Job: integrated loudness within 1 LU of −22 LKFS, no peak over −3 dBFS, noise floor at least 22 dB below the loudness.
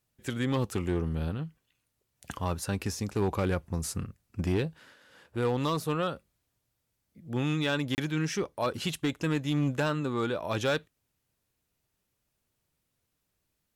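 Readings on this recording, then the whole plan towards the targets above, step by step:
share of clipped samples 0.8%; peaks flattened at −21.5 dBFS; number of dropouts 1; longest dropout 29 ms; integrated loudness −31.0 LKFS; sample peak −21.5 dBFS; target loudness −22.0 LKFS
→ clipped peaks rebuilt −21.5 dBFS
repair the gap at 0:07.95, 29 ms
level +9 dB

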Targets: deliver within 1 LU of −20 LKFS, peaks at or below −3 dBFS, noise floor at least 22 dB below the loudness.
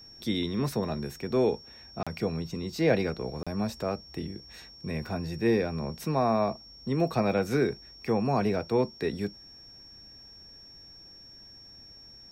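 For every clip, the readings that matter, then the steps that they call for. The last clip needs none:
number of dropouts 2; longest dropout 36 ms; interfering tone 5,500 Hz; level of the tone −48 dBFS; integrated loudness −30.0 LKFS; sample peak −11.0 dBFS; target loudness −20.0 LKFS
→ repair the gap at 0:02.03/0:03.43, 36 ms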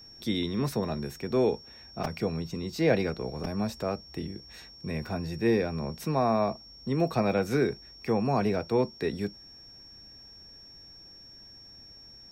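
number of dropouts 0; interfering tone 5,500 Hz; level of the tone −48 dBFS
→ notch filter 5,500 Hz, Q 30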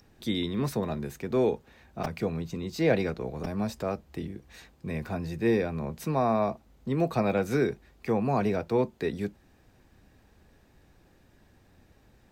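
interfering tone none found; integrated loudness −30.0 LKFS; sample peak −11.5 dBFS; target loudness −20.0 LKFS
→ level +10 dB
brickwall limiter −3 dBFS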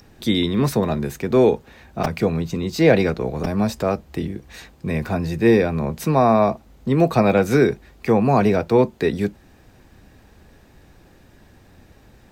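integrated loudness −20.0 LKFS; sample peak −3.0 dBFS; background noise floor −52 dBFS

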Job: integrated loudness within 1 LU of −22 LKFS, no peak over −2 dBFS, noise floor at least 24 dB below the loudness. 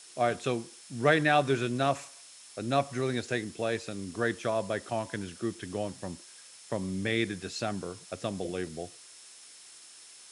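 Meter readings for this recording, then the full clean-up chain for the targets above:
interfering tone 5,300 Hz; level of the tone −58 dBFS; background noise floor −52 dBFS; target noise floor −56 dBFS; integrated loudness −31.5 LKFS; sample peak −10.0 dBFS; target loudness −22.0 LKFS
→ notch filter 5,300 Hz, Q 30
noise reduction from a noise print 6 dB
level +9.5 dB
brickwall limiter −2 dBFS

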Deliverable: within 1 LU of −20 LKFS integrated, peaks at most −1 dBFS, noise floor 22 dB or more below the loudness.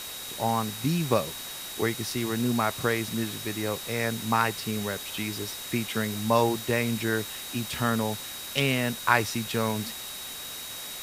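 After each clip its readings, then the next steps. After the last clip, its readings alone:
interfering tone 3,800 Hz; level of the tone −41 dBFS; background noise floor −38 dBFS; target noise floor −50 dBFS; integrated loudness −28.0 LKFS; sample peak −4.5 dBFS; target loudness −20.0 LKFS
→ notch filter 3,800 Hz, Q 30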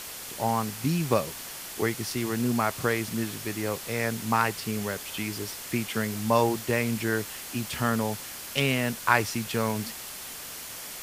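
interfering tone none found; background noise floor −40 dBFS; target noise floor −51 dBFS
→ broadband denoise 11 dB, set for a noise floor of −40 dBFS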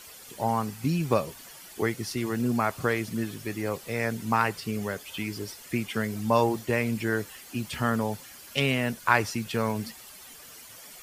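background noise floor −47 dBFS; target noise floor −51 dBFS
→ broadband denoise 6 dB, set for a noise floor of −47 dBFS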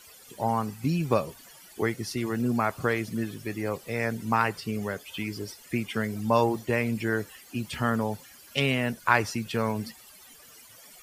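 background noise floor −52 dBFS; integrated loudness −28.5 LKFS; sample peak −4.5 dBFS; target loudness −20.0 LKFS
→ level +8.5 dB
brickwall limiter −1 dBFS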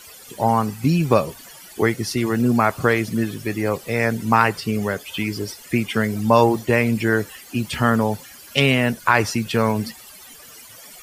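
integrated loudness −20.5 LKFS; sample peak −1.0 dBFS; background noise floor −43 dBFS

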